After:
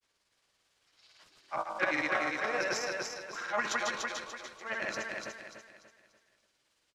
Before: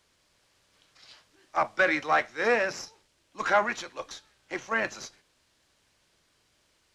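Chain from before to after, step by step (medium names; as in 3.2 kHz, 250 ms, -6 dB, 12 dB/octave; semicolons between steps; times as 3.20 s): bass shelf 280 Hz -7.5 dB; de-hum 54.53 Hz, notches 28; transient shaper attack -8 dB, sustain +12 dB; granulator, grains 18 per s, pitch spread up and down by 0 st; on a send: feedback delay 292 ms, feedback 37%, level -3.5 dB; on the sum: trim -5.5 dB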